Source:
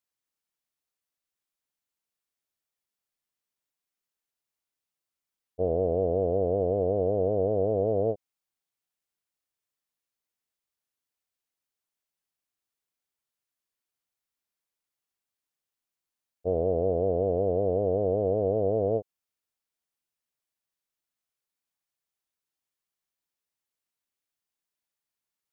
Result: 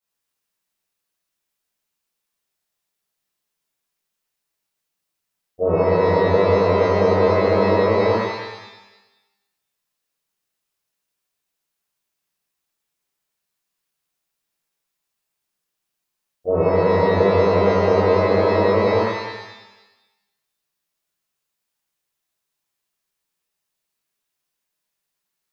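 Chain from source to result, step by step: pitch-shifted reverb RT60 1 s, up +12 st, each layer -8 dB, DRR -11.5 dB; trim -3 dB

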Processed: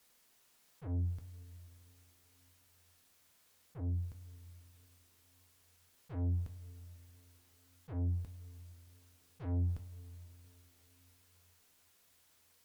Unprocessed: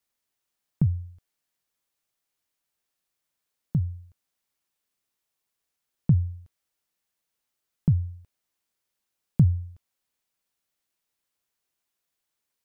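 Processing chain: valve stage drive 37 dB, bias 0.25; slow attack 340 ms; two-slope reverb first 0.23 s, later 4.3 s, from -22 dB, DRR 7 dB; trim +13 dB

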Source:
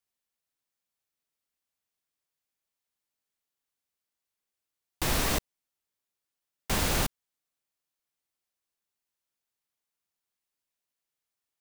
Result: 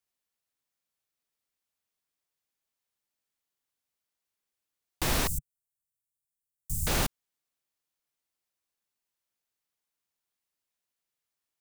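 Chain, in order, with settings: 5.27–6.87 s: Chebyshev band-stop 140–7800 Hz, order 3

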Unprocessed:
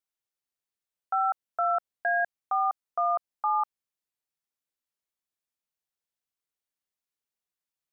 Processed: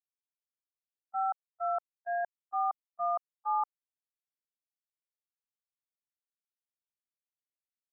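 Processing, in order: gate -23 dBFS, range -58 dB; in parallel at +1 dB: compression, threshold -47 dBFS, peak gain reduction 13.5 dB; on the sum: resonant low-pass 1 kHz, resonance Q 1.9

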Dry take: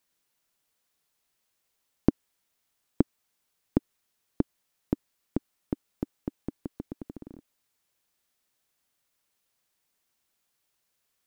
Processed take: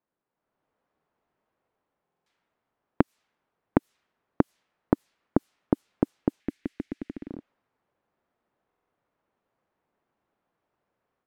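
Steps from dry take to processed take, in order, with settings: compression, threshold -23 dBFS, peak gain reduction 9.5 dB; level-controlled noise filter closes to 1 kHz, open at -32.5 dBFS; bass shelf 84 Hz -10.5 dB; level rider gain up to 9 dB; 6.40–7.28 s: graphic EQ 125/500/1000/2000 Hz -10/-7/-11/+9 dB; buffer glitch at 2.03/8.67 s, samples 2048, times 4; trim +1.5 dB

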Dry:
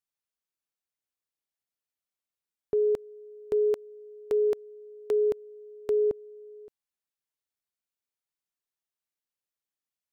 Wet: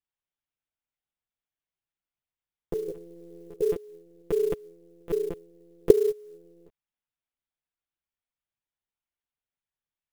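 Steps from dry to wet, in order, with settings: 2.90–3.61 s: compressor with a negative ratio -38 dBFS, ratio -1; monotone LPC vocoder at 8 kHz 170 Hz; sampling jitter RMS 0.021 ms

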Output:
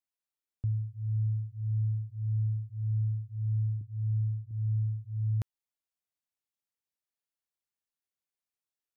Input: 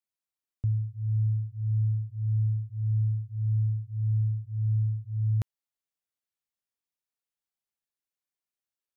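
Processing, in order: 3.81–4.51 s: steep low-pass 500 Hz; trim -3.5 dB

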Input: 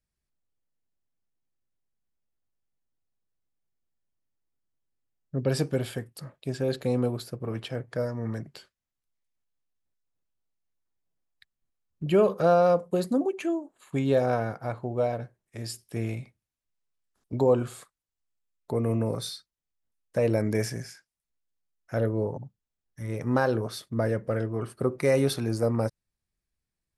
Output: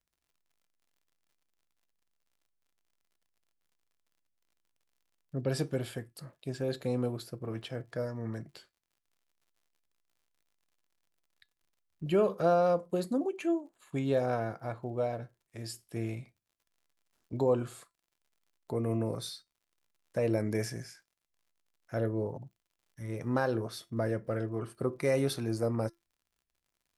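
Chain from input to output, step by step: crackle 73 per s -55 dBFS; feedback comb 340 Hz, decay 0.2 s, harmonics all, mix 50%

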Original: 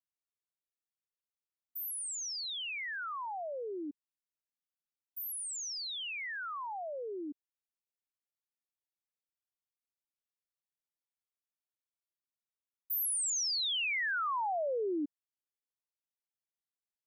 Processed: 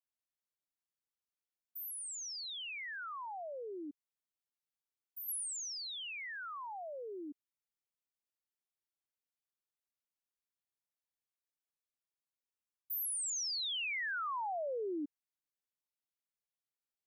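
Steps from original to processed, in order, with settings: 5.28–7.30 s: treble shelf 11 kHz +11.5 dB; trim -4.5 dB

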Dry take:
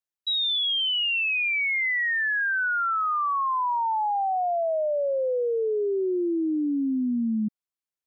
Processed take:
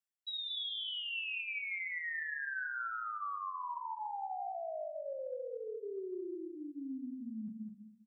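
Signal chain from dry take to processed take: reverb removal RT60 0.92 s; graphic EQ with 31 bands 315 Hz -11 dB, 800 Hz +4 dB, 1.6 kHz +4 dB; feedback delay 206 ms, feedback 16%, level -5 dB; flange 0.71 Hz, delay 9.2 ms, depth 7.1 ms, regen -64%; reverberation RT60 0.65 s, pre-delay 3 ms, DRR 7.5 dB; reverse; compression, threshold -38 dBFS, peak gain reduction 15 dB; reverse

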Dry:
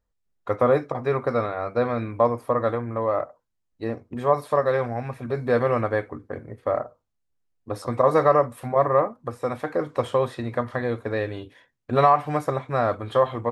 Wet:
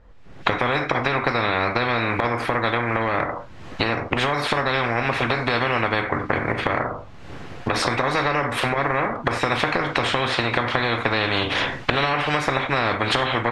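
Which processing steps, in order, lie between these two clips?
recorder AGC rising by 56 dB/s; low-pass 2.6 kHz 12 dB/octave; gated-style reverb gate 130 ms falling, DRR 10.5 dB; loudness maximiser +8 dB; spectrum-flattening compressor 4:1; trim -1 dB

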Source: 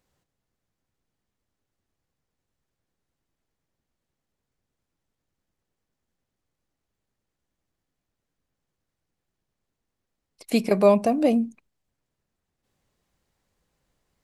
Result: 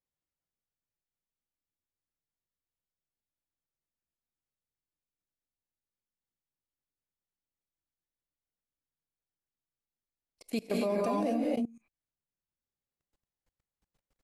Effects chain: gated-style reverb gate 300 ms rising, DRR -2 dB; level held to a coarse grid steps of 23 dB; trim -6.5 dB

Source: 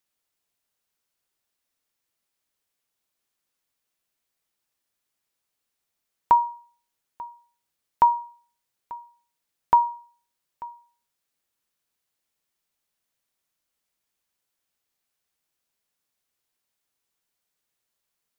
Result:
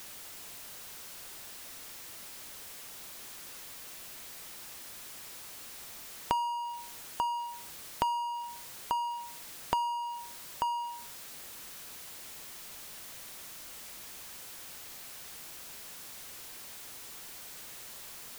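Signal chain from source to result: power-law waveshaper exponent 0.5; compression 8:1, threshold -28 dBFS, peak gain reduction 16 dB; trim -1 dB

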